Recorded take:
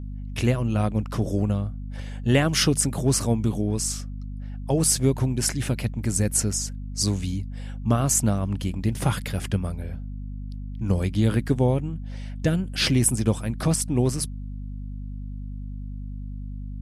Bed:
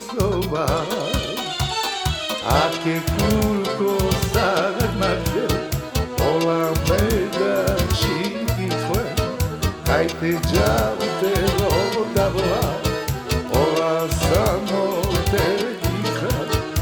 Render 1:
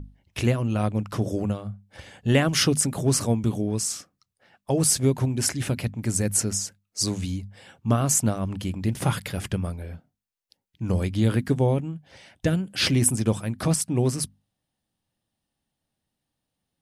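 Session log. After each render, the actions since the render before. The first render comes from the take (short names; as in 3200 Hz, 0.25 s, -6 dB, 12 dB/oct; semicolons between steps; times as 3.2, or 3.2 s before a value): notches 50/100/150/200/250 Hz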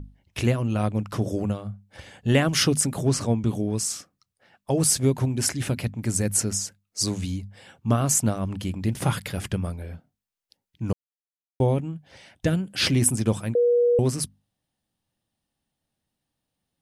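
3.08–3.49 air absorption 54 m; 10.93–11.6 mute; 13.55–13.99 bleep 481 Hz -16 dBFS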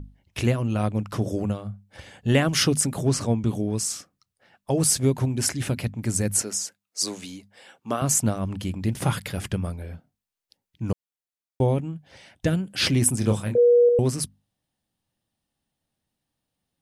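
6.42–8.02 HPF 340 Hz; 13.19–13.89 doubler 29 ms -5 dB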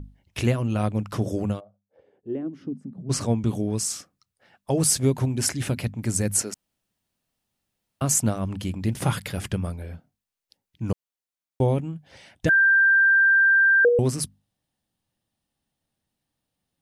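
1.59–3.09 band-pass 650 Hz -> 180 Hz, Q 6; 6.54–8.01 room tone; 12.49–13.85 bleep 1580 Hz -14 dBFS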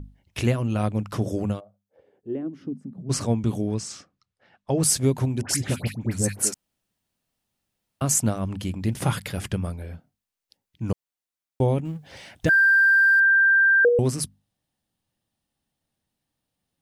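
3.74–4.83 air absorption 100 m; 5.41–6.52 dispersion highs, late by 79 ms, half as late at 1400 Hz; 11.85–13.2 G.711 law mismatch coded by mu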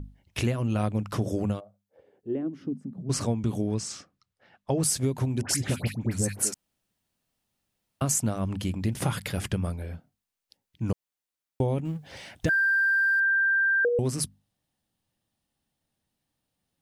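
compressor, threshold -22 dBFS, peak gain reduction 7.5 dB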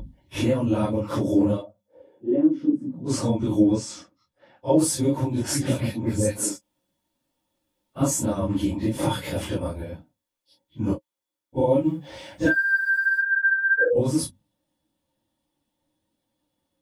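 phase scrambler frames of 0.1 s; small resonant body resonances 310/540/910/3400 Hz, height 14 dB, ringing for 55 ms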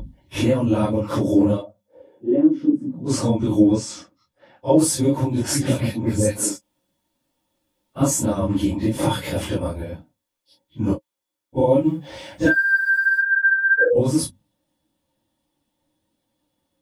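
gain +3.5 dB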